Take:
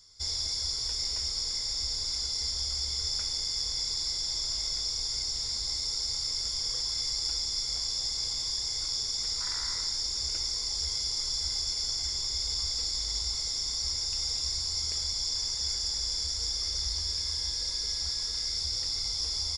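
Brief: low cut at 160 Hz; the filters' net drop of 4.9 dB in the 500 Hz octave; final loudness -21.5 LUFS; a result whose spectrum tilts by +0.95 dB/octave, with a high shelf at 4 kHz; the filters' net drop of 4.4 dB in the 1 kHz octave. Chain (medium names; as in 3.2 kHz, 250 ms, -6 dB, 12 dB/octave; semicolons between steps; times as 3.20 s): high-pass 160 Hz; peaking EQ 500 Hz -5 dB; peaking EQ 1 kHz -3.5 dB; treble shelf 4 kHz -8.5 dB; trim +13 dB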